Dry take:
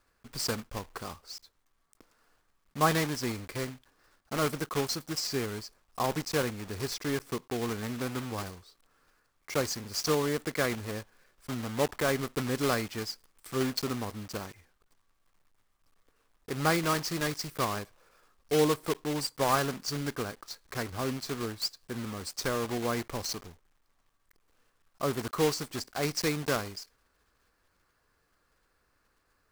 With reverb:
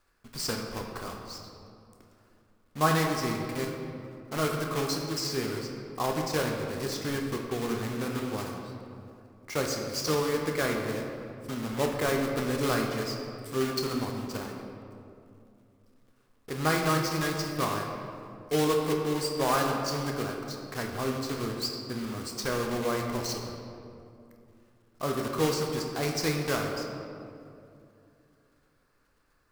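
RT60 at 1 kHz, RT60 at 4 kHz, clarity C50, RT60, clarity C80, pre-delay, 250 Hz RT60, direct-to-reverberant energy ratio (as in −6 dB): 2.4 s, 1.3 s, 3.0 dB, 2.6 s, 4.5 dB, 8 ms, 3.3 s, 1.0 dB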